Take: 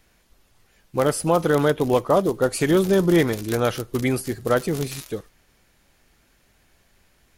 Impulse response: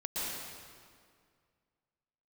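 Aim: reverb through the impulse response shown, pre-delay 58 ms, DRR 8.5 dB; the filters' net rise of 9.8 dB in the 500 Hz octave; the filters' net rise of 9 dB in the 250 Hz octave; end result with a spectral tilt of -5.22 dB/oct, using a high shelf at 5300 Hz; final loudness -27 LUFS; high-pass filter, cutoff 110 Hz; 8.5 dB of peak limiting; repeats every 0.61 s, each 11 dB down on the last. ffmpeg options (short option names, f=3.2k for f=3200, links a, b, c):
-filter_complex "[0:a]highpass=110,equalizer=f=250:t=o:g=9,equalizer=f=500:t=o:g=9,highshelf=f=5.3k:g=9,alimiter=limit=-7dB:level=0:latency=1,aecho=1:1:610|1220|1830:0.282|0.0789|0.0221,asplit=2[a][b];[1:a]atrim=start_sample=2205,adelay=58[c];[b][c]afir=irnorm=-1:irlink=0,volume=-13.5dB[d];[a][d]amix=inputs=2:normalize=0,volume=-10.5dB"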